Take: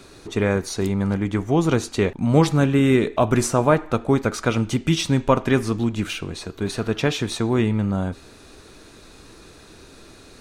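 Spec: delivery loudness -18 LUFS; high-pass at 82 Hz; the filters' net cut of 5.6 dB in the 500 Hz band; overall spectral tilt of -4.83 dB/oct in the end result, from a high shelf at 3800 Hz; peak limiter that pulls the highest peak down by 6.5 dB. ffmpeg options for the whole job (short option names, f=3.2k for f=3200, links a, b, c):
-af "highpass=82,equalizer=f=500:t=o:g=-7.5,highshelf=f=3.8k:g=5,volume=6.5dB,alimiter=limit=-6.5dB:level=0:latency=1"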